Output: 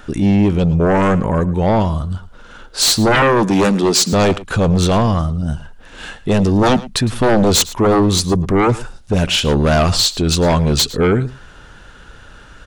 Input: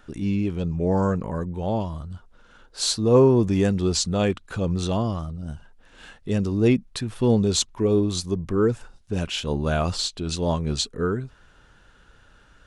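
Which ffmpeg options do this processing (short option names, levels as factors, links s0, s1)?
-filter_complex "[0:a]asettb=1/sr,asplit=3[s0][s1][s2];[s0]atrim=end=3.224[s3];[s1]atrim=start=3.22:end=4.13,asetpts=PTS-STARTPTS,afade=t=in:d=0.004:c=qsin,afade=t=out:st=0.906:d=0.004:c=qsin,highpass=f=200:w=0.5412,highpass=f=200:w=1.3066[s4];[s2]atrim=start=4.126[s5];[s3][s4]acrossfade=d=0.004:c1=hsin:c2=qsin[s6];[s6][s5]acrossfade=d=0.004:c1=qsin:c2=hsin,aeval=exprs='0.501*sin(PI/2*4.47*val(0)/0.501)':c=same,aecho=1:1:109:0.126,volume=0.708"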